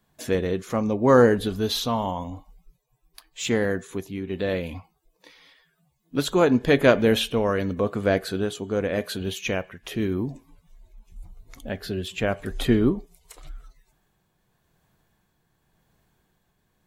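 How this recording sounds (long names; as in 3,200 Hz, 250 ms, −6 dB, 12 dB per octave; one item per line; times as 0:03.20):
tremolo triangle 0.89 Hz, depth 40%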